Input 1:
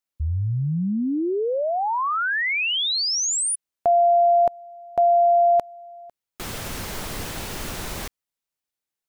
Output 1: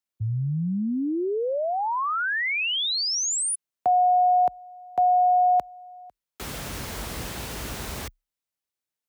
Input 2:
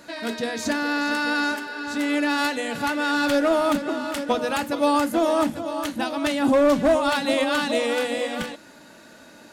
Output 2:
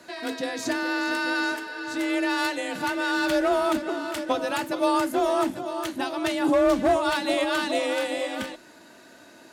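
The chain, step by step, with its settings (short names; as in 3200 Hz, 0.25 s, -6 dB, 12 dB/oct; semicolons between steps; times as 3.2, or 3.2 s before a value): frequency shift +33 Hz; gain -2.5 dB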